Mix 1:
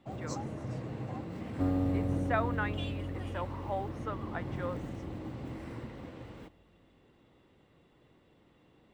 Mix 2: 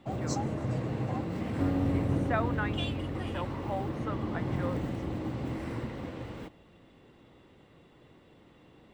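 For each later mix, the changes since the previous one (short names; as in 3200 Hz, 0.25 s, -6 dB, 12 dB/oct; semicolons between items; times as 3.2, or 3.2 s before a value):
first sound +6.5 dB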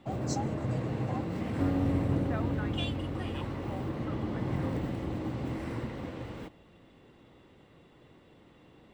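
speech -9.5 dB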